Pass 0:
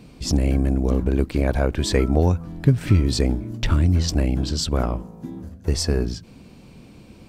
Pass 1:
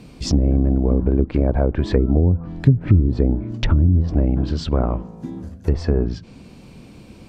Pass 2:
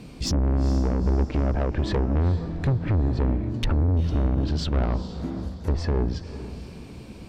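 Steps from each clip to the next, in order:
low-pass that closes with the level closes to 350 Hz, closed at -13.5 dBFS; trim +3 dB
saturation -18.5 dBFS, distortion -8 dB; echo that smears into a reverb 459 ms, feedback 41%, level -12.5 dB

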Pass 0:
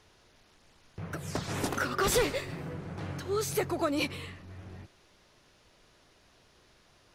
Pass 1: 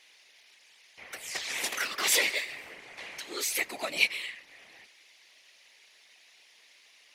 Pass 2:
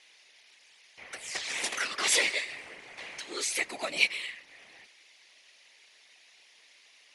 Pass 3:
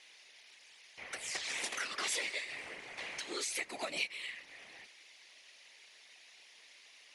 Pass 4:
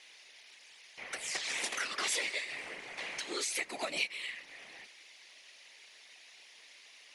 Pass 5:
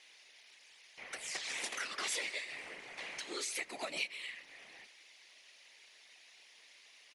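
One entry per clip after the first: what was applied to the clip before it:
high-pass 690 Hz 12 dB/octave; resonant high shelf 1.7 kHz +6.5 dB, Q 3; whisper effect; trim -1 dB
steep low-pass 11 kHz 96 dB/octave
compression 3:1, threshold -37 dBFS, peak gain reduction 14 dB
peaking EQ 85 Hz -14.5 dB 0.38 oct; trim +2.5 dB
speakerphone echo 120 ms, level -21 dB; trim -4 dB

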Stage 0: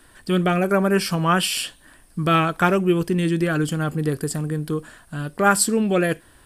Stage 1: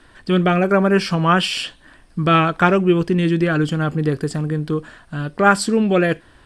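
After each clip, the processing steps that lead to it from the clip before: low-pass 4.9 kHz 12 dB/octave; trim +3.5 dB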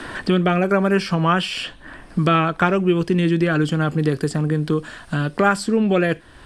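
three bands compressed up and down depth 70%; trim -2 dB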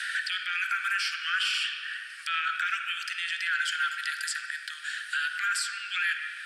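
steep high-pass 1.4 kHz 96 dB/octave; peak limiter -24 dBFS, peak gain reduction 11.5 dB; on a send at -4.5 dB: reverberation RT60 2.4 s, pre-delay 45 ms; on the sum: trim +3.5 dB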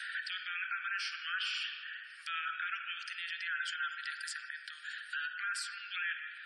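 band-stop 7.7 kHz, Q 11; spectral gate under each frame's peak -25 dB strong; trim -8.5 dB

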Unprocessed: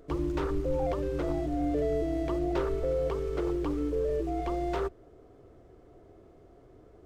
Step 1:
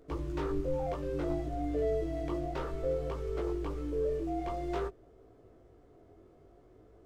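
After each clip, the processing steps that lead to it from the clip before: chorus 0.57 Hz, delay 18 ms, depth 3.6 ms; trim -1 dB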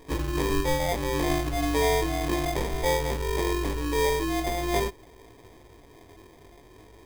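sample-rate reducer 1.4 kHz, jitter 0%; trim +7.5 dB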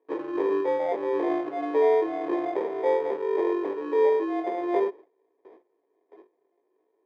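low-pass 1.5 kHz 12 dB/octave; gate with hold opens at -40 dBFS; ladder high-pass 340 Hz, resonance 50%; trim +7.5 dB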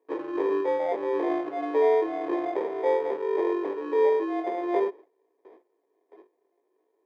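bass shelf 120 Hz -8 dB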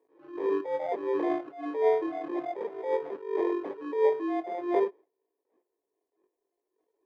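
bass shelf 160 Hz +8 dB; reverb removal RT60 1.6 s; attacks held to a fixed rise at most 110 dB/s

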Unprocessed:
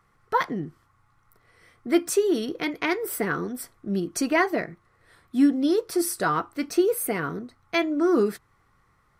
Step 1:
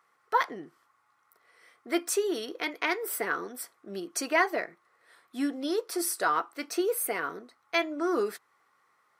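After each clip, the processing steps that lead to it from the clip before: high-pass 480 Hz 12 dB/octave; trim -1.5 dB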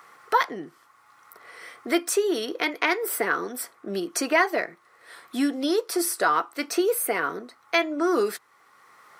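three bands compressed up and down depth 40%; trim +5.5 dB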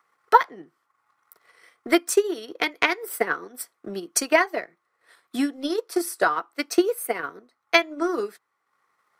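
transient shaper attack +9 dB, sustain -6 dB; three bands expanded up and down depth 40%; trim -4.5 dB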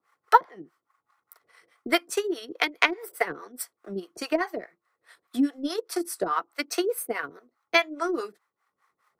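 harmonic tremolo 4.8 Hz, depth 100%, crossover 510 Hz; trim +2.5 dB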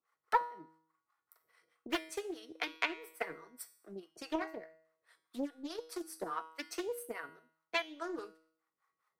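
feedback comb 160 Hz, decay 0.61 s, harmonics all, mix 70%; loudspeaker Doppler distortion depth 0.61 ms; trim -3.5 dB

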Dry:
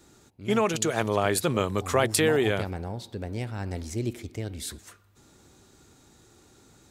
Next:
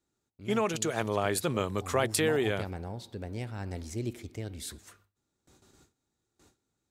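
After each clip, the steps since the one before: gate with hold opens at -45 dBFS; trim -4.5 dB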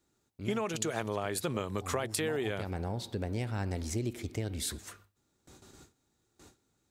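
compression 6:1, threshold -36 dBFS, peak gain reduction 13.5 dB; trim +6 dB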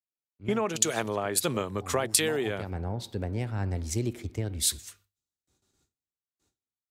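three bands expanded up and down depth 100%; trim +3.5 dB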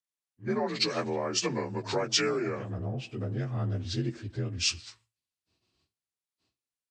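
frequency axis rescaled in octaves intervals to 86%

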